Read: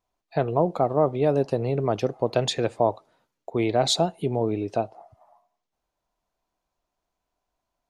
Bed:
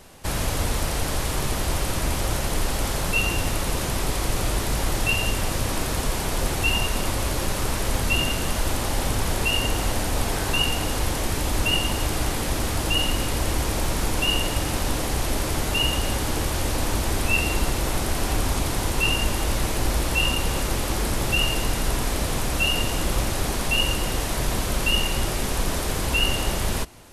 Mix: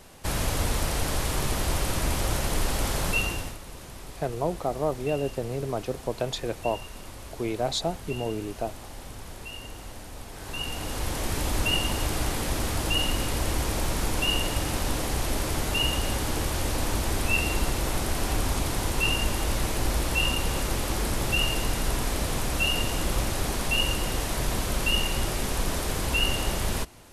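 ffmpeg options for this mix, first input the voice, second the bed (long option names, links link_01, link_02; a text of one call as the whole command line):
ffmpeg -i stem1.wav -i stem2.wav -filter_complex "[0:a]adelay=3850,volume=-6dB[link_01];[1:a]volume=12dB,afade=type=out:start_time=3.09:duration=0.49:silence=0.177828,afade=type=in:start_time=10.32:duration=1.08:silence=0.199526[link_02];[link_01][link_02]amix=inputs=2:normalize=0" out.wav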